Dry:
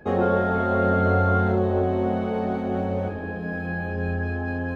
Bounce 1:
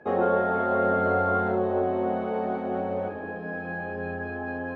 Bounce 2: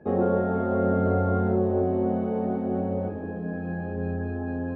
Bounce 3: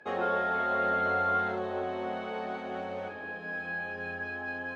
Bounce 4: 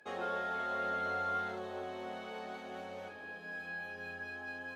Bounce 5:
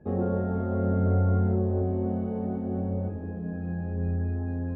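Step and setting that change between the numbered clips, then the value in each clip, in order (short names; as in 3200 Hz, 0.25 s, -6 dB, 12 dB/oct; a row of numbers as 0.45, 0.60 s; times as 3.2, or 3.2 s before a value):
band-pass, frequency: 820, 260, 2800, 7200, 100 Hz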